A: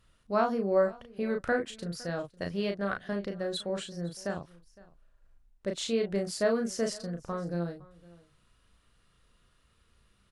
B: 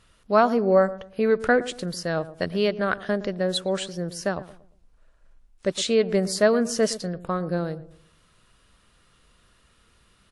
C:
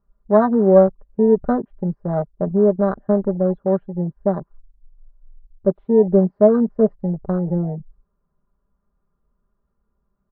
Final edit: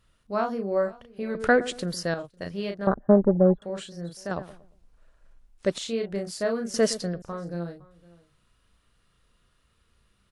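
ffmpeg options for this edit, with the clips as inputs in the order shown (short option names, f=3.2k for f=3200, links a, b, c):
-filter_complex "[1:a]asplit=3[a][b][c];[0:a]asplit=5[d][e][f][g][h];[d]atrim=end=1.352[i];[a]atrim=start=1.348:end=2.142[j];[e]atrim=start=2.138:end=2.872[k];[2:a]atrim=start=2.868:end=3.622[l];[f]atrim=start=3.618:end=4.312[m];[b]atrim=start=4.308:end=5.782[n];[g]atrim=start=5.778:end=6.742[o];[c]atrim=start=6.738:end=7.222[p];[h]atrim=start=7.218[q];[i][j]acrossfade=d=0.004:c1=hsin:c2=hsin[r];[r][k]acrossfade=d=0.004:c1=hsin:c2=hsin[s];[s][l]acrossfade=d=0.004:c1=hsin:c2=hsin[t];[t][m]acrossfade=d=0.004:c1=hsin:c2=hsin[u];[u][n]acrossfade=d=0.004:c1=hsin:c2=hsin[v];[v][o]acrossfade=d=0.004:c1=hsin:c2=hsin[w];[w][p]acrossfade=d=0.004:c1=hsin:c2=hsin[x];[x][q]acrossfade=d=0.004:c1=hsin:c2=hsin"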